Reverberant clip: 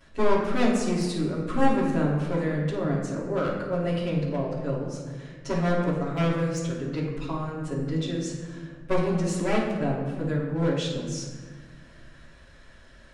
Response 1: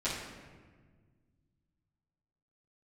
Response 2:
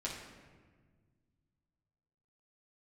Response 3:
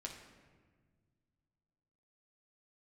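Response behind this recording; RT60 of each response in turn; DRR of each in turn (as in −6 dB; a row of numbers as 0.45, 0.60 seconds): 1; 1.5, 1.6, 1.6 seconds; −12.5, −5.5, −0.5 decibels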